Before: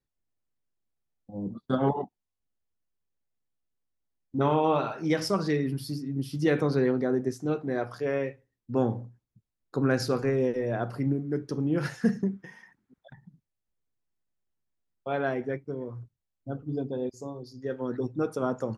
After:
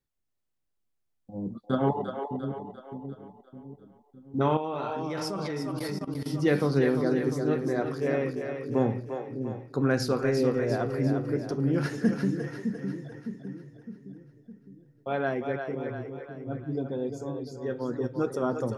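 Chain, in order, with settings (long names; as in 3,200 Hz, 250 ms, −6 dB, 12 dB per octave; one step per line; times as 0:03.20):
echo with a time of its own for lows and highs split 380 Hz, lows 610 ms, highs 348 ms, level −6 dB
0:04.57–0:06.26: output level in coarse steps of 16 dB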